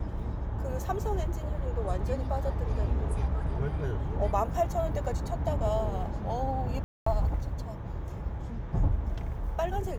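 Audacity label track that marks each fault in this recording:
6.840000	7.060000	drop-out 224 ms

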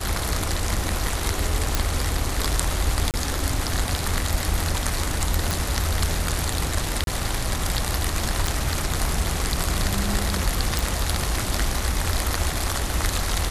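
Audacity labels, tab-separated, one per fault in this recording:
1.750000	1.750000	click
3.110000	3.140000	drop-out 28 ms
5.510000	5.510000	click
7.040000	7.070000	drop-out 32 ms
8.470000	8.470000	click
10.790000	10.790000	click

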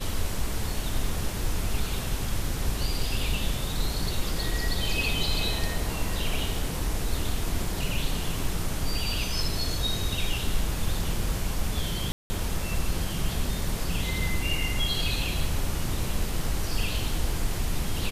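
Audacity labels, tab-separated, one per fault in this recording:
12.120000	12.300000	drop-out 180 ms

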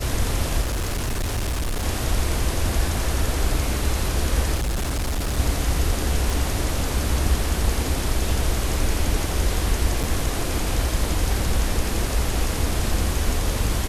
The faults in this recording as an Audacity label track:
0.610000	1.860000	clipping −21 dBFS
4.550000	5.390000	clipping −20.5 dBFS
6.300000	6.300000	click
10.030000	10.040000	drop-out 6.5 ms

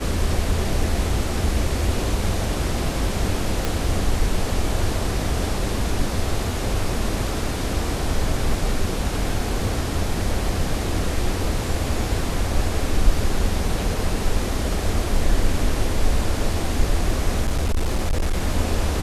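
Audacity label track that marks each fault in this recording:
3.650000	3.650000	click
17.410000	18.430000	clipping −16.5 dBFS

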